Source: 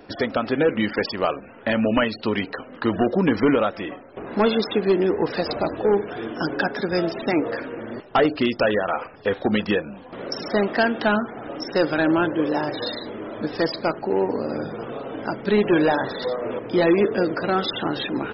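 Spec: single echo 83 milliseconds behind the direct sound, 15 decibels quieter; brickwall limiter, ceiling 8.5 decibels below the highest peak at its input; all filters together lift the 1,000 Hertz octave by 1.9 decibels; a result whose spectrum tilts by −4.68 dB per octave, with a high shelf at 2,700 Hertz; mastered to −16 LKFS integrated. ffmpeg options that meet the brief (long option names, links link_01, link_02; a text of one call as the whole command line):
ffmpeg -i in.wav -af "equalizer=frequency=1000:width_type=o:gain=4,highshelf=frequency=2700:gain=-8.5,alimiter=limit=-16.5dB:level=0:latency=1,aecho=1:1:83:0.178,volume=11dB" out.wav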